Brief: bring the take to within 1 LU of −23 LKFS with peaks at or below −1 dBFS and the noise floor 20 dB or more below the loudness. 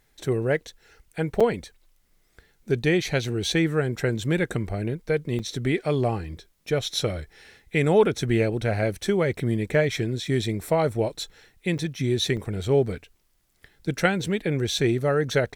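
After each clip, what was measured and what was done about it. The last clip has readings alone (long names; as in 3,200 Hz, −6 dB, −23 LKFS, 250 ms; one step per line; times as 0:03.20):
number of dropouts 4; longest dropout 5.6 ms; integrated loudness −25.0 LKFS; sample peak −7.0 dBFS; target loudness −23.0 LKFS
→ repair the gap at 0:01.40/0:05.39/0:11.78/0:12.37, 5.6 ms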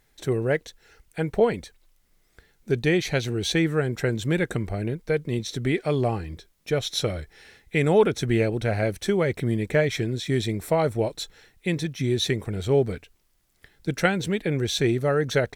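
number of dropouts 0; integrated loudness −25.0 LKFS; sample peak −7.0 dBFS; target loudness −23.0 LKFS
→ level +2 dB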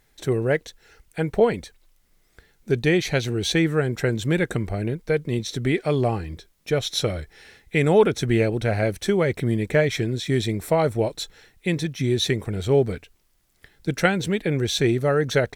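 integrated loudness −23.0 LKFS; sample peak −5.0 dBFS; background noise floor −63 dBFS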